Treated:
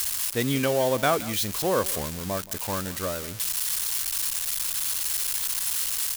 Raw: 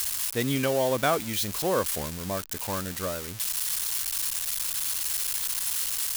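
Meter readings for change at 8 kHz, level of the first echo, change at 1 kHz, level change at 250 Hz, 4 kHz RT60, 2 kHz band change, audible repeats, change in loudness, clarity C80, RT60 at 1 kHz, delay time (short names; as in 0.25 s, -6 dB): +1.5 dB, -18.5 dB, +1.5 dB, +1.5 dB, none, +1.5 dB, 1, +1.5 dB, none, none, 0.174 s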